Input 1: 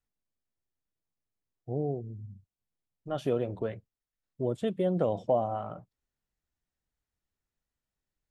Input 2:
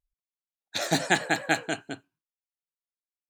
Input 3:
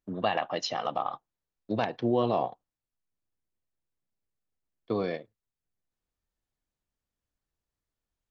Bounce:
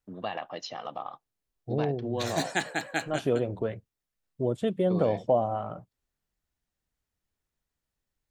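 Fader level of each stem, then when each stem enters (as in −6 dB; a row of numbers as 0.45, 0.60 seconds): +2.5, −5.5, −6.5 decibels; 0.00, 1.45, 0.00 seconds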